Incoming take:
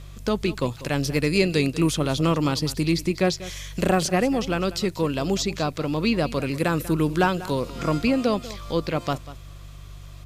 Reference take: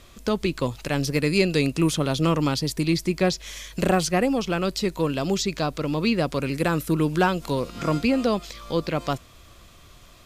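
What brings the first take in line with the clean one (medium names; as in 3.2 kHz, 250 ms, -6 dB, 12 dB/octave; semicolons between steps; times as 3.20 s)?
de-hum 48.8 Hz, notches 3; inverse comb 192 ms -16.5 dB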